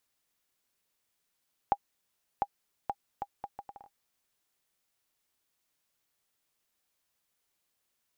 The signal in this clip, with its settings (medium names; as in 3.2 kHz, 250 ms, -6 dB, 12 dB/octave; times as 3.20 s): bouncing ball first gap 0.70 s, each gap 0.68, 808 Hz, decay 53 ms -13.5 dBFS